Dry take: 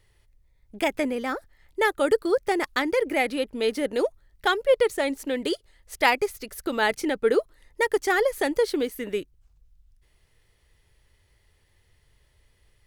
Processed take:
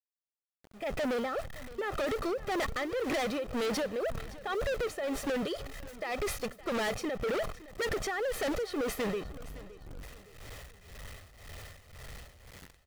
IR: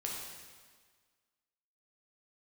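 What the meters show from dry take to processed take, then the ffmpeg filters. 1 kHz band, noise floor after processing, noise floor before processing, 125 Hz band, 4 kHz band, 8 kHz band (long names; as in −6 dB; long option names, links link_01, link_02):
−9.5 dB, below −85 dBFS, −65 dBFS, can't be measured, −7.5 dB, −3.5 dB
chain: -filter_complex "[0:a]aeval=exprs='val(0)+0.5*0.0282*sgn(val(0))':channel_layout=same,aemphasis=mode=reproduction:type=75kf,agate=range=-33dB:threshold=-25dB:ratio=3:detection=peak,lowshelf=frequency=62:gain=-7.5,aecho=1:1:1.6:0.62,acompressor=threshold=-27dB:ratio=12,alimiter=level_in=4.5dB:limit=-24dB:level=0:latency=1:release=88,volume=-4.5dB,dynaudnorm=framelen=520:gausssize=3:maxgain=14.5dB,acrusher=bits=7:mix=0:aa=0.000001,tremolo=f=1.9:d=0.78,volume=29.5dB,asoftclip=hard,volume=-29.5dB,asplit=2[link_01][link_02];[link_02]aecho=0:1:565|1130|1695:0.126|0.0529|0.0222[link_03];[link_01][link_03]amix=inputs=2:normalize=0"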